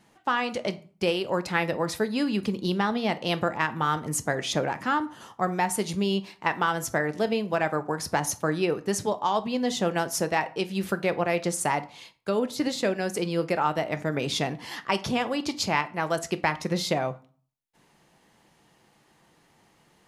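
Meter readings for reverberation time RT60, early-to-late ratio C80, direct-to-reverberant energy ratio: 0.40 s, 23.0 dB, 11.0 dB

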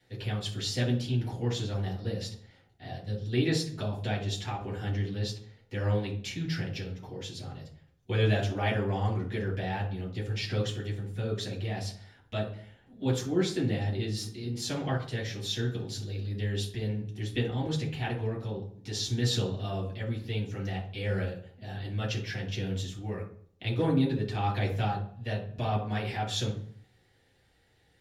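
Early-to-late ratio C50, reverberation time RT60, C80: 8.0 dB, 0.60 s, 12.0 dB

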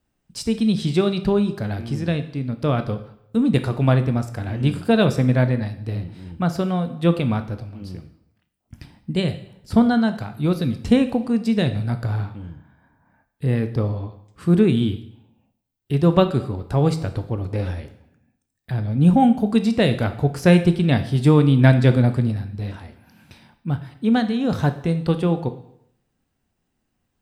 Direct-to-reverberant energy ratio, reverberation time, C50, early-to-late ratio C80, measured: 9.0 dB, 0.75 s, 12.5 dB, 15.5 dB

